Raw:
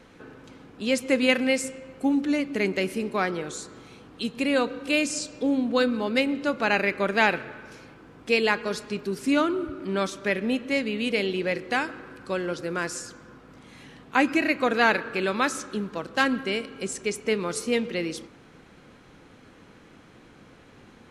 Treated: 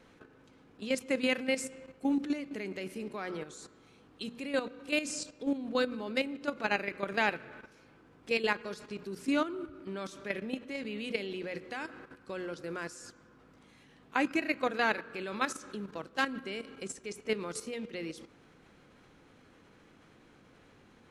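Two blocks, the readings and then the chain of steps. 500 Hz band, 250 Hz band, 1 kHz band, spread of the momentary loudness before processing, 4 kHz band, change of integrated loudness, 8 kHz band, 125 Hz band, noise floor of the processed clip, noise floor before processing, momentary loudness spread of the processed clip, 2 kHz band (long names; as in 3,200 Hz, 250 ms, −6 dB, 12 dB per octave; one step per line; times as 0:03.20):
−9.0 dB, −9.0 dB, −8.5 dB, 11 LU, −8.5 dB, −9.0 dB, −8.5 dB, −10.5 dB, −60 dBFS, −52 dBFS, 13 LU, −8.5 dB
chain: mains-hum notches 60/120/180/240 Hz
output level in coarse steps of 11 dB
level −5 dB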